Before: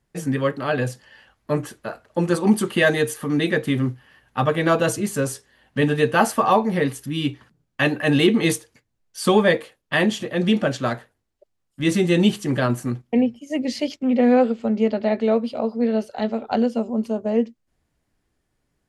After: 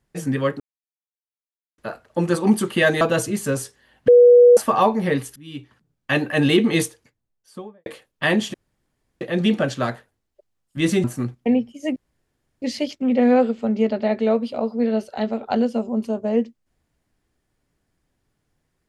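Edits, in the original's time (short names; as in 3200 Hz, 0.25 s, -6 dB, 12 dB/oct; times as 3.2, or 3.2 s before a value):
0.6–1.78 mute
3.01–4.71 cut
5.78–6.27 bleep 486 Hz -6.5 dBFS
7.06–7.92 fade in, from -21.5 dB
8.49–9.56 studio fade out
10.24 insert room tone 0.67 s
12.07–12.71 cut
13.63 insert room tone 0.66 s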